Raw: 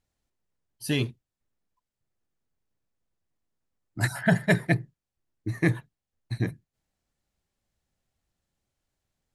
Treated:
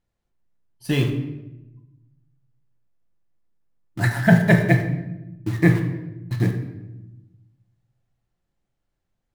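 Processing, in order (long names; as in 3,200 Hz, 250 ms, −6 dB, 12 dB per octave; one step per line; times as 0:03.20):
high-shelf EQ 3,500 Hz −10.5 dB
in parallel at −4.5 dB: bit reduction 6 bits
on the sum: rectangular room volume 400 cubic metres, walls mixed, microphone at 0.83 metres
level +1 dB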